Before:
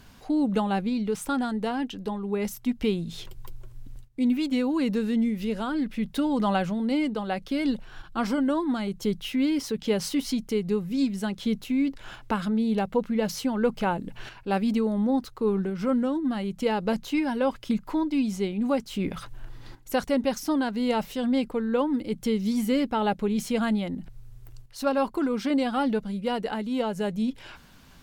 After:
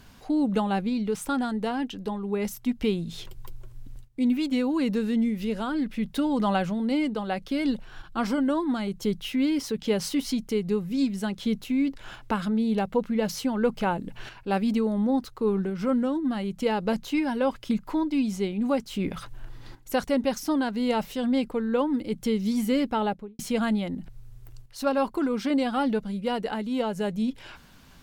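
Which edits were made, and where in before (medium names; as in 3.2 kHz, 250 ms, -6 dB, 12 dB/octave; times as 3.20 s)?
22.96–23.39 s: studio fade out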